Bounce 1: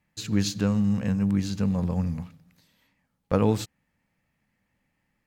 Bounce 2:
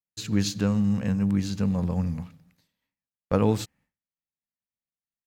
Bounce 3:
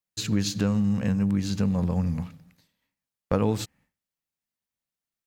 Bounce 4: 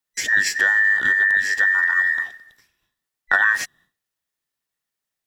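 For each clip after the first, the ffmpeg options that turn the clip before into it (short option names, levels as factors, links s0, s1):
-af "agate=range=0.0224:threshold=0.00178:ratio=3:detection=peak"
-af "acompressor=threshold=0.0447:ratio=2.5,volume=1.68"
-af "afftfilt=real='real(if(between(b,1,1012),(2*floor((b-1)/92)+1)*92-b,b),0)':imag='imag(if(between(b,1,1012),(2*floor((b-1)/92)+1)*92-b,b),0)*if(between(b,1,1012),-1,1)':win_size=2048:overlap=0.75,volume=2"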